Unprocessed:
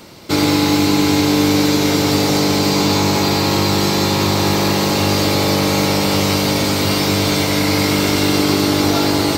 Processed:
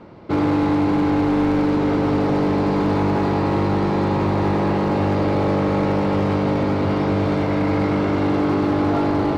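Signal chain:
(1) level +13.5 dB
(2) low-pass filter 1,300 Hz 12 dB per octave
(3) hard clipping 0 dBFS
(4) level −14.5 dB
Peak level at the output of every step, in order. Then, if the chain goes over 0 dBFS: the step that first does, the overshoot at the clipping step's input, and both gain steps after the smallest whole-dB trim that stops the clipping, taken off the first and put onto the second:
+10.5, +9.0, 0.0, −14.5 dBFS
step 1, 9.0 dB
step 1 +4.5 dB, step 4 −5.5 dB

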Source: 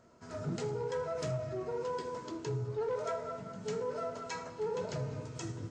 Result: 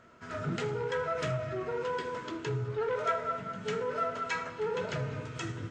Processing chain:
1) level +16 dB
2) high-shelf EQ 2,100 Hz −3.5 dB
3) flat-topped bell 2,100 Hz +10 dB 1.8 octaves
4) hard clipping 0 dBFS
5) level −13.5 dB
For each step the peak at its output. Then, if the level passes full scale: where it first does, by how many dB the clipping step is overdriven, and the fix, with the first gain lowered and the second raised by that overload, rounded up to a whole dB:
−11.5, −12.5, −6.0, −6.0, −19.5 dBFS
no step passes full scale

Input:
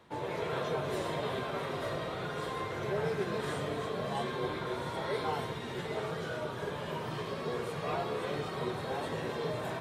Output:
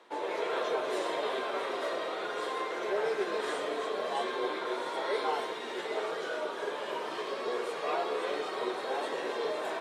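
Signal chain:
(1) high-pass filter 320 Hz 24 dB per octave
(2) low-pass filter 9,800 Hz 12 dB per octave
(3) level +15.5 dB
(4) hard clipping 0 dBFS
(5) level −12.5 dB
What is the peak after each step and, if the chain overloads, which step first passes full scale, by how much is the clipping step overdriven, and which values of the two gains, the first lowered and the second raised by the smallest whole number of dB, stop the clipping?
−21.5, −21.5, −6.0, −6.0, −18.5 dBFS
no step passes full scale

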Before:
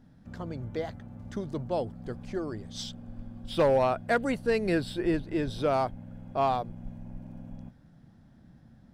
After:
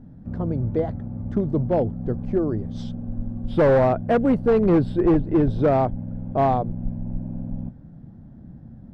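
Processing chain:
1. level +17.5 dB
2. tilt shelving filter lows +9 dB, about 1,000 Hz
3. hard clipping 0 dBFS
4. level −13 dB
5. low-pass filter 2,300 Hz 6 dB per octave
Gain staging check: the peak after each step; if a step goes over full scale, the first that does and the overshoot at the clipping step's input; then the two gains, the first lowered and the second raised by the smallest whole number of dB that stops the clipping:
+1.5, +9.0, 0.0, −13.0, −13.0 dBFS
step 1, 9.0 dB
step 1 +8.5 dB, step 4 −4 dB

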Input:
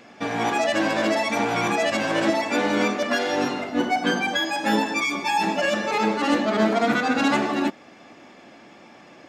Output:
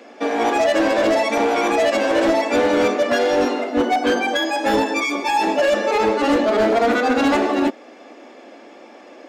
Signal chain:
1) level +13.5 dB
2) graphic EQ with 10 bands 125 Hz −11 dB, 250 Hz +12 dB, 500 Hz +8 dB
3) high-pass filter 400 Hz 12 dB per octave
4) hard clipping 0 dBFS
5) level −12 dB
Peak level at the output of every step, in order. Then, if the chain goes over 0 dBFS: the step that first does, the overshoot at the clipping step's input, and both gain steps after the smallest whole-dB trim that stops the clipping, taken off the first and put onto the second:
+5.0, +12.5, +9.0, 0.0, −12.0 dBFS
step 1, 9.0 dB
step 1 +4.5 dB, step 5 −3 dB

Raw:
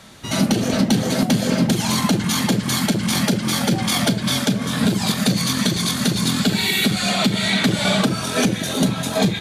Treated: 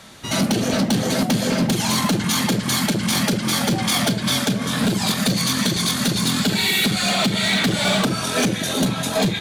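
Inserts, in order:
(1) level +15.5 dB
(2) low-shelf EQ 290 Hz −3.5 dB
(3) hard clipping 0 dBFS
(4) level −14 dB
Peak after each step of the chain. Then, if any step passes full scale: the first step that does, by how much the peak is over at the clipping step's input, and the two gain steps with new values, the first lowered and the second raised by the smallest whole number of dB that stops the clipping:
+8.5, +8.5, 0.0, −14.0 dBFS
step 1, 8.5 dB
step 1 +6.5 dB, step 4 −5 dB

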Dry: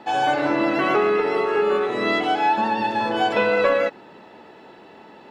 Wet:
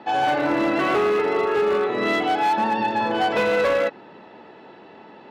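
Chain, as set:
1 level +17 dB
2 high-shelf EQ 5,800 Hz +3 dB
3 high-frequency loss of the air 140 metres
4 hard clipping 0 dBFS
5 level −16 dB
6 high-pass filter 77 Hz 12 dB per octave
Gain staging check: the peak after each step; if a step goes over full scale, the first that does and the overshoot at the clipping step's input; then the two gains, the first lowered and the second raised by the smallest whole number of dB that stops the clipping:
+9.5, +9.5, +9.0, 0.0, −16.0, −13.0 dBFS
step 1, 9.0 dB
step 1 +8 dB, step 5 −7 dB

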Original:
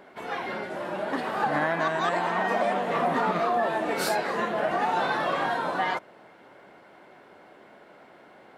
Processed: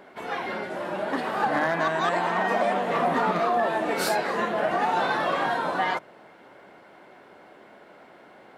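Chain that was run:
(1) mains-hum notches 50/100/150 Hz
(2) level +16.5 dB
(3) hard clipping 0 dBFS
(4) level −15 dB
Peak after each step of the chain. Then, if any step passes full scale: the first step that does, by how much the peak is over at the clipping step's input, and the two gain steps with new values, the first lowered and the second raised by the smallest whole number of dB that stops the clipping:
−13.0, +3.5, 0.0, −15.0 dBFS
step 2, 3.5 dB
step 2 +12.5 dB, step 4 −11 dB

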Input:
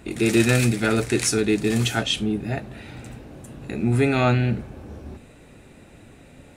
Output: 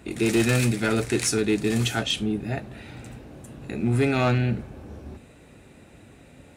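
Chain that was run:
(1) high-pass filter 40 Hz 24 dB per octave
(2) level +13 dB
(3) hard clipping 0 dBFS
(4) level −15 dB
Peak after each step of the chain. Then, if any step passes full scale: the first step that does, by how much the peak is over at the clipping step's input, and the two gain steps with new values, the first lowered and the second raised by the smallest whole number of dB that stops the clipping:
−6.0, +7.0, 0.0, −15.0 dBFS
step 2, 7.0 dB
step 2 +6 dB, step 4 −8 dB

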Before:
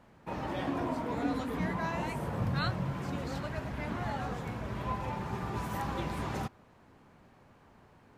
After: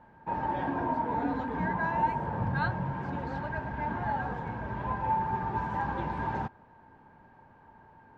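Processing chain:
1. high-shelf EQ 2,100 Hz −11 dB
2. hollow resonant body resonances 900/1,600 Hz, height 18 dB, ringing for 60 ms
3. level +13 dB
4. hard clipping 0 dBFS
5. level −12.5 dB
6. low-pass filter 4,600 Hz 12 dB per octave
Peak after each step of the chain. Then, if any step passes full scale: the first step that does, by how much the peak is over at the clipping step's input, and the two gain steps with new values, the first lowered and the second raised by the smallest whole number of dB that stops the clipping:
−20.0, −17.5, −4.5, −4.5, −17.0, −17.0 dBFS
no step passes full scale

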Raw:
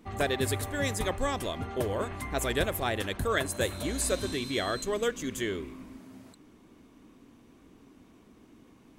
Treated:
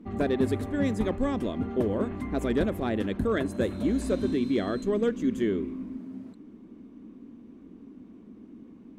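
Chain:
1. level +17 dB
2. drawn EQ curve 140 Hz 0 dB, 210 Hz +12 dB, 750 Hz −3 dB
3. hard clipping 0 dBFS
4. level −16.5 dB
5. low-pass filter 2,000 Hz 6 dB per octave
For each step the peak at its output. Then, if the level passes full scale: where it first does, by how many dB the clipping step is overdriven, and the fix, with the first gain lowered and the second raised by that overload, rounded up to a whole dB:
+3.5, +6.5, 0.0, −16.5, −16.5 dBFS
step 1, 6.5 dB
step 1 +10 dB, step 4 −9.5 dB

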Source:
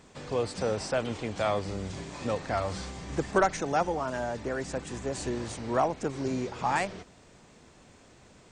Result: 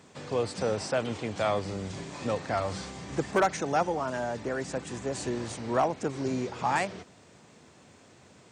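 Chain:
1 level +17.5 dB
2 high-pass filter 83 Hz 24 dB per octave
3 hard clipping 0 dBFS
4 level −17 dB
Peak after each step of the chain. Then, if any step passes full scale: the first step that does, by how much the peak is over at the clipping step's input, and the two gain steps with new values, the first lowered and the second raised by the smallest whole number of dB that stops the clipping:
+6.5, +6.5, 0.0, −17.0 dBFS
step 1, 6.5 dB
step 1 +10.5 dB, step 4 −10 dB

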